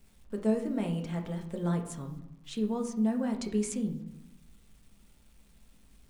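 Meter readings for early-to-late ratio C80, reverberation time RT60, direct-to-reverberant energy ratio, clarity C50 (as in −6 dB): 12.5 dB, 0.85 s, 3.0 dB, 9.0 dB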